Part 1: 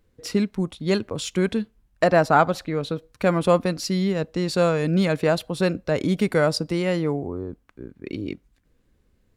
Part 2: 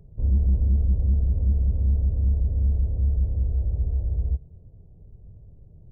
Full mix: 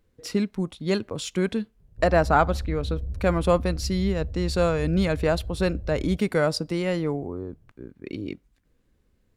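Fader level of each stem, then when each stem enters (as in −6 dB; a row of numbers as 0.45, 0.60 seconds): −2.5, −9.5 decibels; 0.00, 1.80 seconds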